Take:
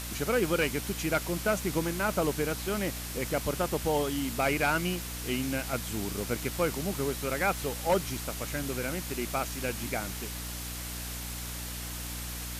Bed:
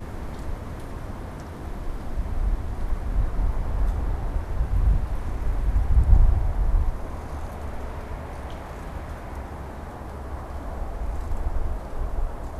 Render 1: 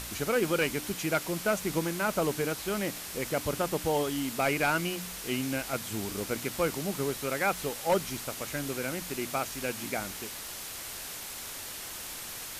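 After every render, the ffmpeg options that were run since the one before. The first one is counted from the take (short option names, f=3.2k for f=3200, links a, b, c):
-af "bandreject=f=60:t=h:w=4,bandreject=f=120:t=h:w=4,bandreject=f=180:t=h:w=4,bandreject=f=240:t=h:w=4,bandreject=f=300:t=h:w=4"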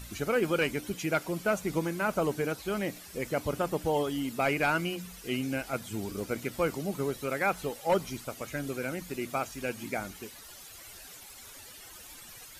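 -af "afftdn=nr=13:nf=-41"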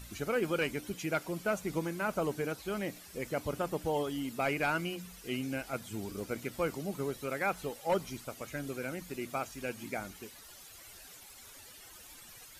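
-af "volume=-4dB"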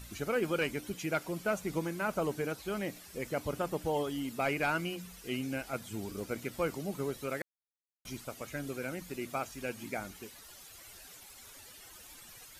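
-filter_complex "[0:a]asplit=3[a][b][c];[a]atrim=end=7.42,asetpts=PTS-STARTPTS,afade=t=out:st=7.416:d=0.004:c=hsin[d];[b]atrim=start=7.42:end=8.05,asetpts=PTS-STARTPTS,volume=0[e];[c]atrim=start=8.05,asetpts=PTS-STARTPTS,afade=t=in:d=0.004:c=hsin[f];[d][e][f]concat=n=3:v=0:a=1"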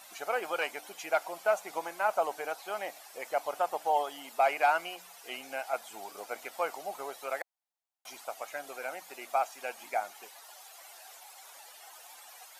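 -af "highpass=f=750:t=q:w=4"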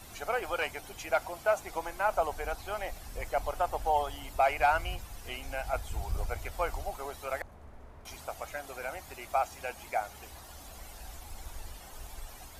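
-filter_complex "[1:a]volume=-18dB[a];[0:a][a]amix=inputs=2:normalize=0"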